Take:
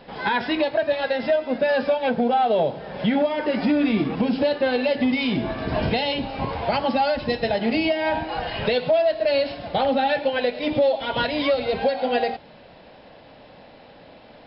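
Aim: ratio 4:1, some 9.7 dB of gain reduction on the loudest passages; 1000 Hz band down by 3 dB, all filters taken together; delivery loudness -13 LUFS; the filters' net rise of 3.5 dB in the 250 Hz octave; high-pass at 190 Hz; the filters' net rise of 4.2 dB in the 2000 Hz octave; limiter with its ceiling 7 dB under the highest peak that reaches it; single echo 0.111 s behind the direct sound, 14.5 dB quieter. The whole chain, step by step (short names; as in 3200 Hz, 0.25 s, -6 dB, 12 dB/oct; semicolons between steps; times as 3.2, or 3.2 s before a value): HPF 190 Hz; bell 250 Hz +5.5 dB; bell 1000 Hz -6 dB; bell 2000 Hz +7 dB; compressor 4:1, threshold -25 dBFS; limiter -20 dBFS; echo 0.111 s -14.5 dB; gain +16 dB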